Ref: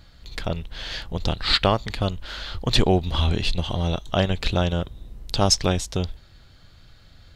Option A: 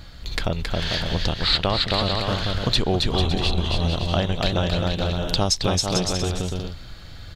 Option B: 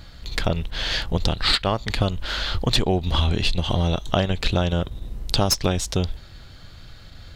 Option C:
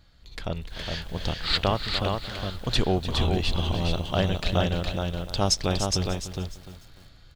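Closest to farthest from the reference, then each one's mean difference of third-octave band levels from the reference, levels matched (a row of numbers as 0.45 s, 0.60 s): B, C, A; 4.0 dB, 7.0 dB, 9.0 dB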